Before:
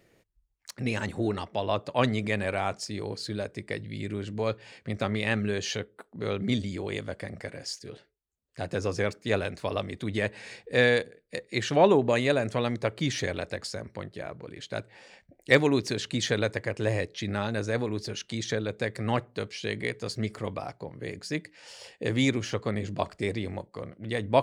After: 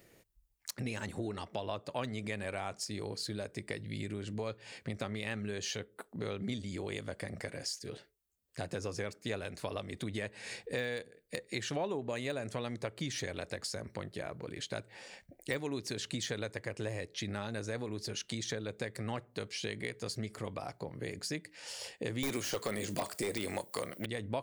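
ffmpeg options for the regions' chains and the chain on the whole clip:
-filter_complex "[0:a]asettb=1/sr,asplit=3[s0][s1][s2];[s0]atrim=end=22.234[s3];[s1]atrim=start=22.23:end=24.06,asetpts=PTS-STARTPTS,afade=t=in:d=0.004:c=qsin,afade=t=out:st=1.826:d=0.004:c=qsin,aemphasis=mode=production:type=riaa,aeval=exprs='0.335*sin(PI/2*3.98*val(0)/0.335)':c=same[s4];[s2]atrim=start=24.056[s5];[s3][s4]acrossfade=d=0.004:c1=hsin:c2=qsin[s6];[s6][s5]acrossfade=d=0.004:c1=qsin:c2=hsin,deesser=0.6,highshelf=f=7700:g=11.5,acompressor=threshold=0.0158:ratio=4"

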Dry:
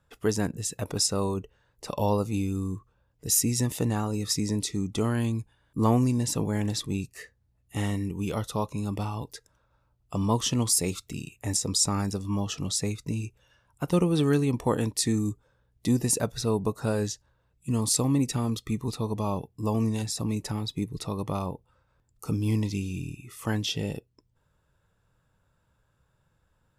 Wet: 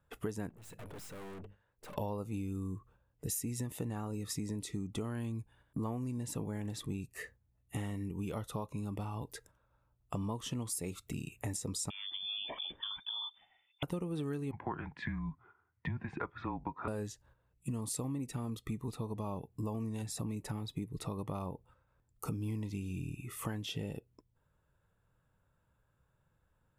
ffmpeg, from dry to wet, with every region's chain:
-filter_complex "[0:a]asettb=1/sr,asplit=3[s0][s1][s2];[s0]atrim=end=0.494[s3];[s1]atrim=start=0.49:end=1.96,asetpts=PTS-STARTPTS,afade=t=in:d=0.004:c=qsin,afade=t=out:st=1.466:d=0.004:c=qsin,bass=f=250:g=-4,treble=f=4000:g=-6,bandreject=f=50:t=h:w=6,bandreject=f=100:t=h:w=6,bandreject=f=150:t=h:w=6,bandreject=f=200:t=h:w=6,aeval=exprs='(tanh(251*val(0)+0.55)-tanh(0.55))/251':c=same[s4];[s2]atrim=start=1.956[s5];[s3][s4]acrossfade=d=0.004:c1=hsin:c2=qsin[s6];[s6][s5]acrossfade=d=0.004:c1=qsin:c2=hsin,asettb=1/sr,asplit=3[s7][s8][s9];[s7]atrim=end=11.904[s10];[s8]atrim=start=11.9:end=13.83,asetpts=PTS-STARTPTS,afade=t=in:d=0.004:c=qsin,afade=t=out:st=1.926:d=0.004:c=qsin,acompressor=threshold=0.02:ratio=3:attack=3.2:release=140:knee=1:detection=peak,lowpass=f=3100:t=q:w=0.5098,lowpass=f=3100:t=q:w=0.6013,lowpass=f=3100:t=q:w=0.9,lowpass=f=3100:t=q:w=2.563,afreqshift=-3600[s11];[s9]atrim=start=13.826[s12];[s10][s11]acrossfade=d=0.004:c1=hsin:c2=qsin[s13];[s13][s12]acrossfade=d=0.004:c1=qsin:c2=hsin,asettb=1/sr,asplit=3[s14][s15][s16];[s14]atrim=end=14.514[s17];[s15]atrim=start=14.51:end=16.88,asetpts=PTS-STARTPTS,afade=t=in:d=0.004:c=qsin,afade=t=out:st=2.366:d=0.004:c=qsin,afreqshift=-140,highpass=130,equalizer=f=150:t=q:w=4:g=4,equalizer=f=300:t=q:w=4:g=-6,equalizer=f=590:t=q:w=4:g=-5,equalizer=f=990:t=q:w=4:g=9,equalizer=f=1400:t=q:w=4:g=9,equalizer=f=2000:t=q:w=4:g=7,lowpass=f=2600:w=0.5412,lowpass=f=2600:w=1.3066[s18];[s16]atrim=start=16.876[s19];[s17][s18]acrossfade=d=0.004:c1=hsin:c2=qsin[s20];[s20][s19]acrossfade=d=0.004:c1=qsin:c2=hsin,agate=range=0.447:threshold=0.00141:ratio=16:detection=peak,equalizer=f=5200:t=o:w=1.1:g=-9,acompressor=threshold=0.0126:ratio=6,volume=1.26"

